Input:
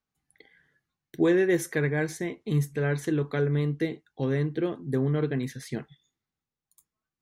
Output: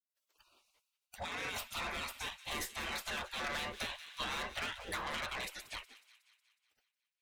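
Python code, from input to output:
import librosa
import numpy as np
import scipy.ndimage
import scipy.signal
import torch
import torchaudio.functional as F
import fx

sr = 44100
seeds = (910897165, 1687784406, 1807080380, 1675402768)

p1 = fx.spec_gate(x, sr, threshold_db=-30, keep='weak')
p2 = fx.high_shelf(p1, sr, hz=6200.0, db=-6.5)
p3 = fx.over_compress(p2, sr, threshold_db=-50.0, ratio=-1.0, at=(1.21, 1.89), fade=0.02)
p4 = fx.tube_stage(p3, sr, drive_db=52.0, bias=0.35)
p5 = p4 + fx.echo_wet_highpass(p4, sr, ms=183, feedback_pct=57, hz=1900.0, wet_db=-15.0, dry=0)
p6 = fx.band_squash(p5, sr, depth_pct=100, at=(3.44, 5.23))
y = p6 * 10.0 ** (16.5 / 20.0)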